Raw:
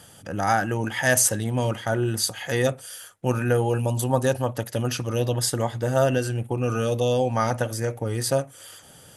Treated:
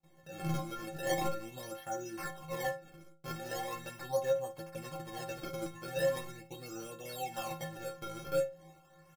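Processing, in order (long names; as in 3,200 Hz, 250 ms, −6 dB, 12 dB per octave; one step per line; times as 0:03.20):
noise gate with hold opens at −39 dBFS
sample-and-hold swept by an LFO 27×, swing 160% 0.4 Hz
stiff-string resonator 160 Hz, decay 0.47 s, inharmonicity 0.03
on a send: ambience of single reflections 13 ms −7.5 dB, 55 ms −17.5 dB
on the sum: level −1 dB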